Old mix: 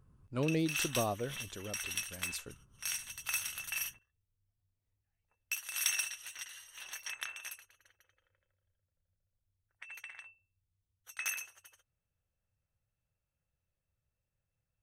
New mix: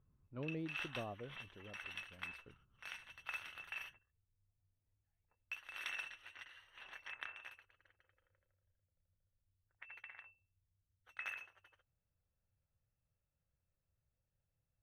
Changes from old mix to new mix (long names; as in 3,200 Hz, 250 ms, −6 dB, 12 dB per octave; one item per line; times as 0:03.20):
speech −10.5 dB
master: add high-frequency loss of the air 460 metres